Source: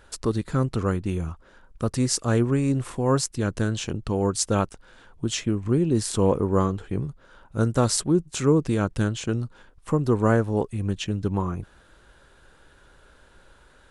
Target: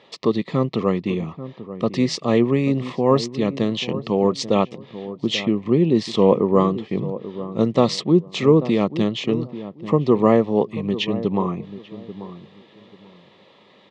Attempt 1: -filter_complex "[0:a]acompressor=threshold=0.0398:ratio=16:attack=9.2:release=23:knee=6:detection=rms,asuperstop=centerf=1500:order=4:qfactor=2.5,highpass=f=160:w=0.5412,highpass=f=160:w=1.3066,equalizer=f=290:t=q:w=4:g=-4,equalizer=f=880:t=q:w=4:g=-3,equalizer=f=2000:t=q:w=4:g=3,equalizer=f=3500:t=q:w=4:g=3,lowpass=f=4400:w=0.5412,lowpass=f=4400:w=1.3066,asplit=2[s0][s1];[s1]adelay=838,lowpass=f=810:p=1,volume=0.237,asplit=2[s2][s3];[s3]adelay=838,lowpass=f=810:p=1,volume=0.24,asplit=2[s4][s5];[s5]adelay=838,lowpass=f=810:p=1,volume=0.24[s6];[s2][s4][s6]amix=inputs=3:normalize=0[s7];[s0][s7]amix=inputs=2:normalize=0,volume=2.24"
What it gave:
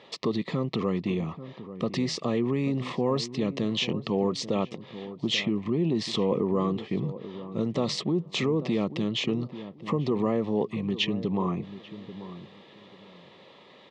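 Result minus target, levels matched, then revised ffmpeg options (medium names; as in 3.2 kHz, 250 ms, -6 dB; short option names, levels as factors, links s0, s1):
compression: peak gain reduction +13.5 dB
-filter_complex "[0:a]asuperstop=centerf=1500:order=4:qfactor=2.5,highpass=f=160:w=0.5412,highpass=f=160:w=1.3066,equalizer=f=290:t=q:w=4:g=-4,equalizer=f=880:t=q:w=4:g=-3,equalizer=f=2000:t=q:w=4:g=3,equalizer=f=3500:t=q:w=4:g=3,lowpass=f=4400:w=0.5412,lowpass=f=4400:w=1.3066,asplit=2[s0][s1];[s1]adelay=838,lowpass=f=810:p=1,volume=0.237,asplit=2[s2][s3];[s3]adelay=838,lowpass=f=810:p=1,volume=0.24,asplit=2[s4][s5];[s5]adelay=838,lowpass=f=810:p=1,volume=0.24[s6];[s2][s4][s6]amix=inputs=3:normalize=0[s7];[s0][s7]amix=inputs=2:normalize=0,volume=2.24"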